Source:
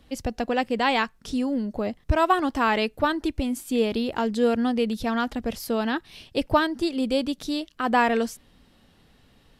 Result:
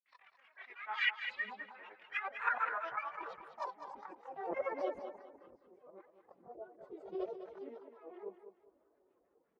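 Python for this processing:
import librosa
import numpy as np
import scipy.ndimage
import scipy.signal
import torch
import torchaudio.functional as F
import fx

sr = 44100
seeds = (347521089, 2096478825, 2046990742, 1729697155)

p1 = fx.doppler_pass(x, sr, speed_mps=10, closest_m=12.0, pass_at_s=2.98)
p2 = fx.highpass(p1, sr, hz=92.0, slope=6)
p3 = fx.peak_eq(p2, sr, hz=6100.0, db=9.5, octaves=0.7)
p4 = fx.hum_notches(p3, sr, base_hz=60, count=6)
p5 = fx.hpss(p4, sr, part='harmonic', gain_db=-12)
p6 = fx.curve_eq(p5, sr, hz=(130.0, 200.0, 1200.0, 3600.0, 12000.0), db=(0, -7, 11, -14, -30))
p7 = fx.auto_swell(p6, sr, attack_ms=771.0)
p8 = fx.granulator(p7, sr, seeds[0], grain_ms=100.0, per_s=20.0, spray_ms=100.0, spread_st=12)
p9 = fx.chorus_voices(p8, sr, voices=4, hz=0.27, base_ms=23, depth_ms=4.1, mix_pct=65)
p10 = fx.pitch_keep_formants(p9, sr, semitones=4.0)
p11 = fx.filter_sweep_bandpass(p10, sr, from_hz=2200.0, to_hz=410.0, start_s=1.94, end_s=5.44, q=2.8)
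p12 = p11 + fx.echo_thinned(p11, sr, ms=202, feedback_pct=30, hz=190.0, wet_db=-9.0, dry=0)
y = F.gain(torch.from_numpy(p12), 15.5).numpy()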